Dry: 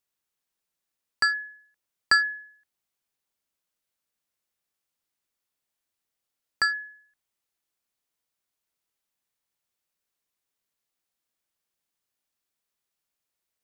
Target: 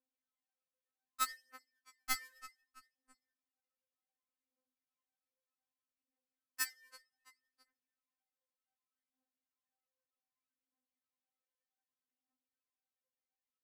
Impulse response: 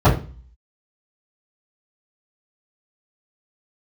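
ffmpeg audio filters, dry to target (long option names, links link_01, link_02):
-filter_complex "[0:a]acrossover=split=130[link_01][link_02];[link_01]acrusher=bits=6:mix=0:aa=0.000001[link_03];[link_02]acompressor=threshold=-36dB:ratio=5[link_04];[link_03][link_04]amix=inputs=2:normalize=0,agate=range=-7dB:threshold=-57dB:ratio=16:detection=peak,adynamicsmooth=sensitivity=3.5:basefreq=1100,asplit=2[link_05][link_06];[link_06]aecho=0:1:332|664|996:0.0708|0.0333|0.0156[link_07];[link_05][link_07]amix=inputs=2:normalize=0,aphaser=in_gain=1:out_gain=1:delay=1.9:decay=0.72:speed=0.65:type=triangular,aresample=32000,aresample=44100,asoftclip=type=hard:threshold=-27dB,aemphasis=mode=production:type=75kf,afftfilt=real='re*3.46*eq(mod(b,12),0)':imag='im*3.46*eq(mod(b,12),0)':win_size=2048:overlap=0.75,volume=4dB"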